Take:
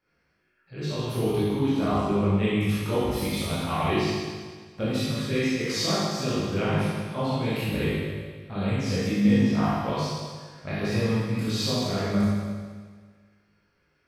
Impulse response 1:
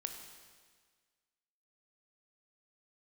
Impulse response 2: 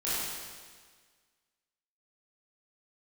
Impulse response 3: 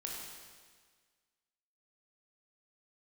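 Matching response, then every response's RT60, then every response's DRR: 2; 1.6 s, 1.6 s, 1.6 s; 5.0 dB, -11.5 dB, -2.5 dB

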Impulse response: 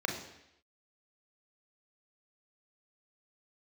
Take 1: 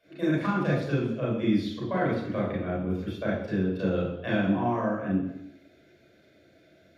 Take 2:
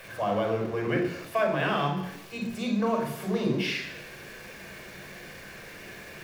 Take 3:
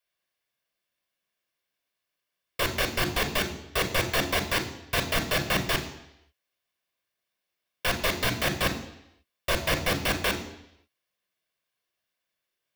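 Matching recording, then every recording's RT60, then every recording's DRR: 2; 0.80 s, 0.80 s, 0.80 s; -6.5 dB, 2.0 dB, 7.0 dB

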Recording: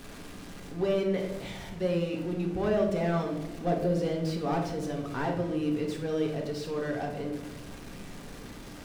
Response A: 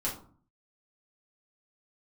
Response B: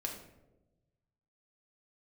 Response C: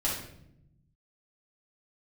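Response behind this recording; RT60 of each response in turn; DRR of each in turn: B; 0.45 s, 1.0 s, 0.75 s; -6.0 dB, 0.0 dB, -7.5 dB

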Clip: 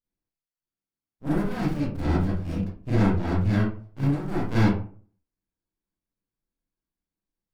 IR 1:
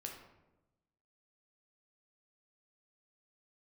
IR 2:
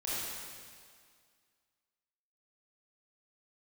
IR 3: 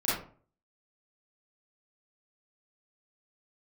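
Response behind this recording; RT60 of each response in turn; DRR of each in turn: 3; 1.0 s, 2.0 s, 0.45 s; 0.5 dB, -9.0 dB, -10.5 dB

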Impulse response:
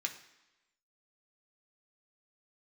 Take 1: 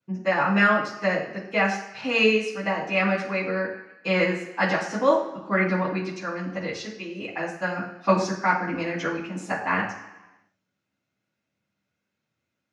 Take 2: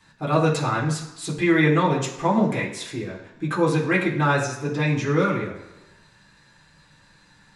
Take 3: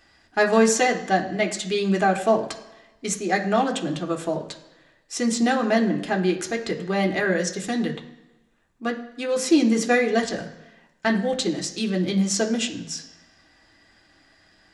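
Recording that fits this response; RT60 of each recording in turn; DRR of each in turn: 3; 1.0 s, 1.0 s, 1.0 s; -14.5 dB, -7.0 dB, 2.5 dB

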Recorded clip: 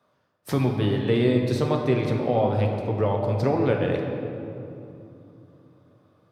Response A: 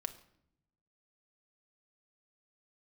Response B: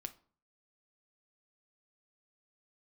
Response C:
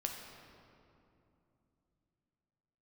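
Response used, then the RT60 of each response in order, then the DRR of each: C; 0.70 s, 0.45 s, 2.9 s; 7.5 dB, 8.5 dB, 1.5 dB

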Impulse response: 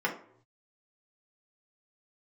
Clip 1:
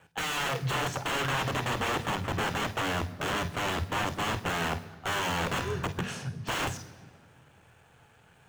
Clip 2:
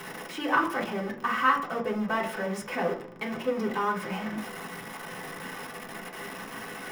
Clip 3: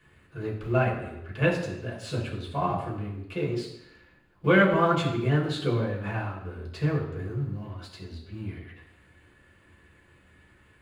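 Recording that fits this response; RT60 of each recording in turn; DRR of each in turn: 2; 1.9 s, no single decay rate, 0.85 s; 9.5 dB, -3.5 dB, -4.5 dB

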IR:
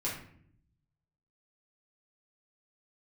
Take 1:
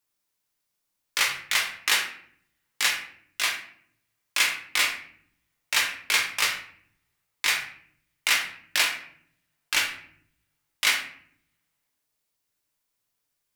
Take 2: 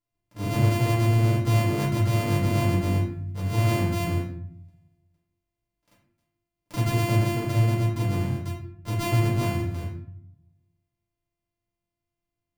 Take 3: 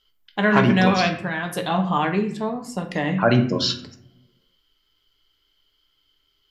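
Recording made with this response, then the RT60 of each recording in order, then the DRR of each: 2; 0.60 s, 0.60 s, 0.65 s; 0.0 dB, -6.5 dB, 4.5 dB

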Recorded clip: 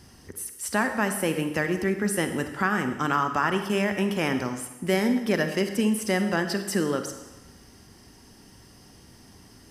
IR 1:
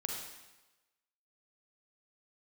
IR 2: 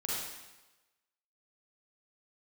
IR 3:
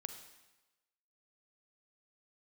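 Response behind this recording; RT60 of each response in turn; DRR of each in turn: 3; 1.1 s, 1.1 s, 1.1 s; 0.0 dB, -6.5 dB, 7.0 dB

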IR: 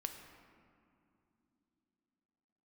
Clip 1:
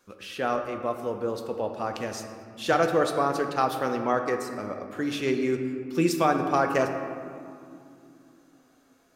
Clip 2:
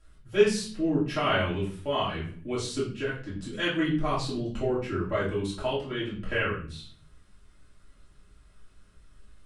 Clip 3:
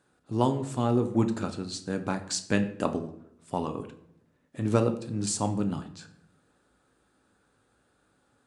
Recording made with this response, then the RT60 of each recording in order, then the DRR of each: 1; no single decay rate, 0.45 s, 0.75 s; 5.0 dB, -9.0 dB, 7.0 dB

